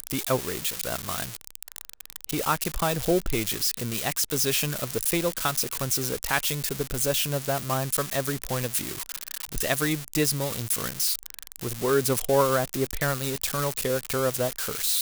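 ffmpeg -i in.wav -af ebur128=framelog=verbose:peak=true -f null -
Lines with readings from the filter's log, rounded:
Integrated loudness:
  I:         -26.1 LUFS
  Threshold: -36.3 LUFS
Loudness range:
  LRA:         2.5 LU
  Threshold: -46.1 LUFS
  LRA low:   -27.7 LUFS
  LRA high:  -25.2 LUFS
True peak:
  Peak:       -8.1 dBFS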